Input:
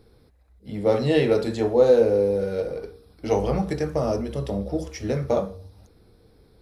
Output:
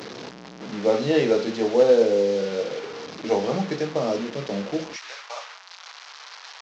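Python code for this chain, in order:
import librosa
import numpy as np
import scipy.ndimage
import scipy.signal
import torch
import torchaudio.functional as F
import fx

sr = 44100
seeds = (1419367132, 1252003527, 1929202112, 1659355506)

y = fx.delta_mod(x, sr, bps=32000, step_db=-28.5)
y = fx.highpass(y, sr, hz=fx.steps((0.0, 160.0), (4.96, 950.0)), slope=24)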